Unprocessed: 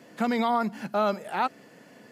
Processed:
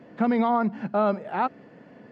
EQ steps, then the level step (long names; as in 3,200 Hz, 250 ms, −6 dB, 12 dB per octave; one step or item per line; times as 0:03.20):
head-to-tape spacing loss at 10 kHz 35 dB
low-shelf EQ 86 Hz +6 dB
+4.5 dB